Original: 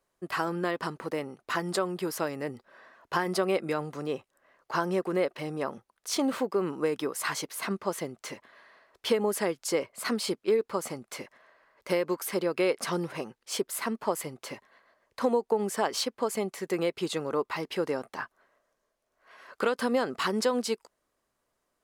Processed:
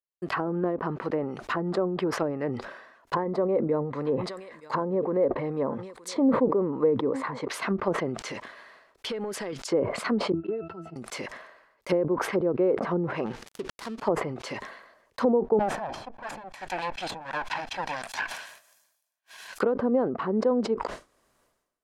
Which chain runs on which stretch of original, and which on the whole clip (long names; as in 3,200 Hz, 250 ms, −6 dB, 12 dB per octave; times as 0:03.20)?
0:03.13–0:07.48: EQ curve with evenly spaced ripples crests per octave 1, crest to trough 7 dB + single-tap delay 921 ms −24 dB
0:08.31–0:09.53: downward compressor 3 to 1, threshold −40 dBFS + leveller curve on the samples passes 1
0:10.32–0:10.96: notch filter 6,700 Hz, Q 15 + resonances in every octave E, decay 0.12 s + multiband upward and downward expander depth 100%
0:13.26–0:13.98: gap after every zero crossing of 0.18 ms + downward compressor 1.5 to 1, threshold −50 dBFS
0:15.59–0:19.58: lower of the sound and its delayed copy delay 1.2 ms + spectral tilt +4.5 dB per octave
whole clip: downward expander −50 dBFS; treble cut that deepens with the level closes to 600 Hz, closed at −26 dBFS; level that may fall only so fast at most 62 dB per second; level +4 dB